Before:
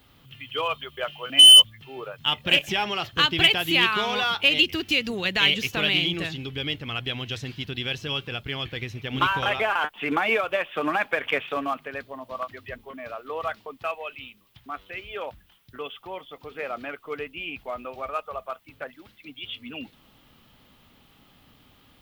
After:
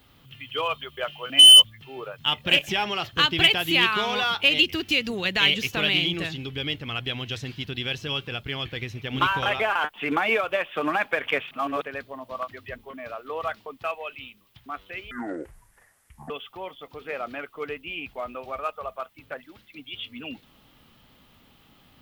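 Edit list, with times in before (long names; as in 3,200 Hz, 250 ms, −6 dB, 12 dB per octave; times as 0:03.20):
0:11.51–0:11.82: reverse
0:15.11–0:15.80: play speed 58%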